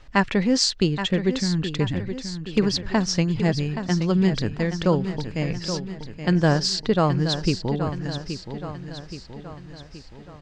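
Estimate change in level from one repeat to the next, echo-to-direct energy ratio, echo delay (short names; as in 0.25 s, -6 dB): -5.5 dB, -8.0 dB, 0.824 s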